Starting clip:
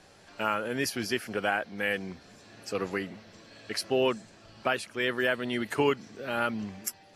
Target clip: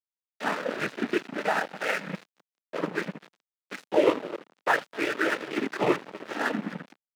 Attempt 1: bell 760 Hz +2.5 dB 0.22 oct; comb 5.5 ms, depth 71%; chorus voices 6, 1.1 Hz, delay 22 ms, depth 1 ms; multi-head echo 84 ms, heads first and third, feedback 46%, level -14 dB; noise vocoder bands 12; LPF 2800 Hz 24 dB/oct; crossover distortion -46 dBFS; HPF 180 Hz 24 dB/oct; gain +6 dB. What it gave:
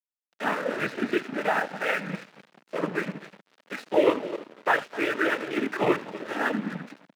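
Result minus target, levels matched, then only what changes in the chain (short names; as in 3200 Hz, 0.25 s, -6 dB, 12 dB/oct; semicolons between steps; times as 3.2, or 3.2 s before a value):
crossover distortion: distortion -6 dB
change: crossover distortion -39 dBFS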